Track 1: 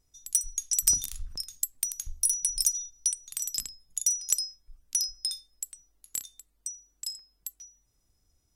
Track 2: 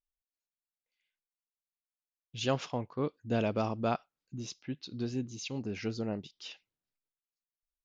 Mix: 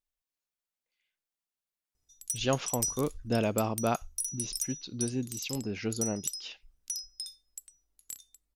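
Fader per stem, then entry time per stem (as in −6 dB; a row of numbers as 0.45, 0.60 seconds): −8.5, +2.0 decibels; 1.95, 0.00 seconds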